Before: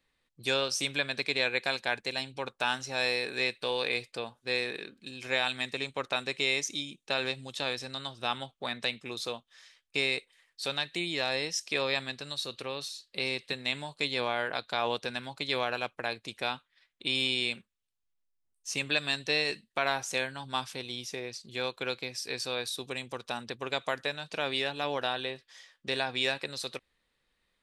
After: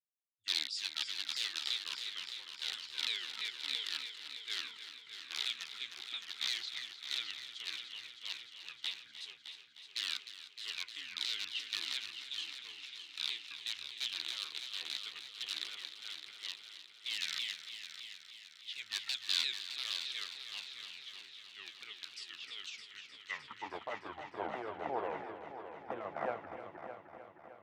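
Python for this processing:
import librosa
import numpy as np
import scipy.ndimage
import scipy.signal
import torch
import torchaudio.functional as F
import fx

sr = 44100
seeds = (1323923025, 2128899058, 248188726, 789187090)

p1 = fx.pitch_ramps(x, sr, semitones=-12.0, every_ms=341)
p2 = fx.graphic_eq_15(p1, sr, hz=(100, 630, 4000, 10000), db=(7, -11, -7, 5))
p3 = (np.mod(10.0 ** (22.5 / 20.0) * p2 + 1.0, 2.0) - 1.0) / 10.0 ** (22.5 / 20.0)
p4 = fx.filter_sweep_bandpass(p3, sr, from_hz=3800.0, to_hz=700.0, start_s=23.04, end_s=23.73, q=4.1)
p5 = p4 + fx.echo_heads(p4, sr, ms=307, heads='first and second', feedback_pct=70, wet_db=-9, dry=0)
p6 = fx.band_widen(p5, sr, depth_pct=70)
y = F.gain(torch.from_numpy(p6), 4.5).numpy()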